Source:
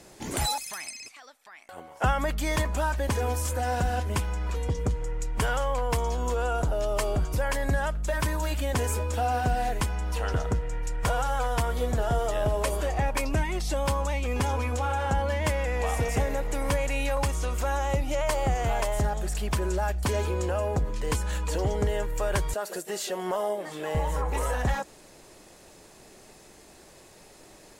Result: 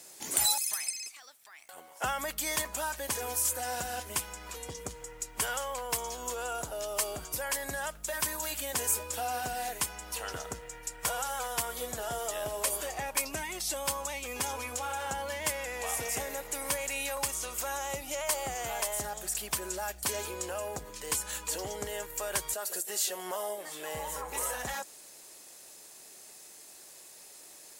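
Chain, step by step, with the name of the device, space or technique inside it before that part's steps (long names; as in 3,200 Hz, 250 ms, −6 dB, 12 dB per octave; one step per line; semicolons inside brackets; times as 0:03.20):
turntable without a phono preamp (RIAA equalisation recording; white noise bed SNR 37 dB)
level −6 dB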